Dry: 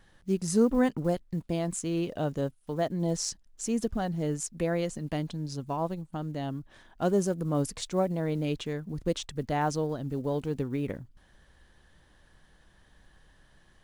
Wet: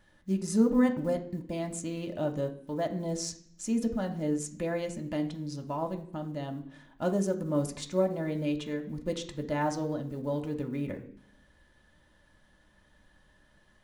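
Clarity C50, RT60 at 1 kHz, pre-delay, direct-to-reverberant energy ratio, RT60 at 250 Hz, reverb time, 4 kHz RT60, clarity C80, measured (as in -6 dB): 12.0 dB, 0.60 s, 3 ms, 1.5 dB, 0.95 s, 0.60 s, 0.80 s, 15.5 dB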